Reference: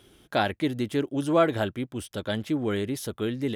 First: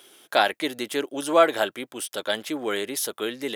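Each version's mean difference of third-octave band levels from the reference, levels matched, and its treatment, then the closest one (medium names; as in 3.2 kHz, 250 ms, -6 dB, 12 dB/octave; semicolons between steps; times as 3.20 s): 7.0 dB: high-pass 490 Hz 12 dB/octave; treble shelf 5.7 kHz +7 dB; trim +5.5 dB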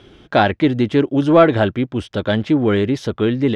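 3.0 dB: in parallel at -5.5 dB: saturation -20.5 dBFS, distortion -12 dB; on the sum: distance through air 160 m; trim +8.5 dB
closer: second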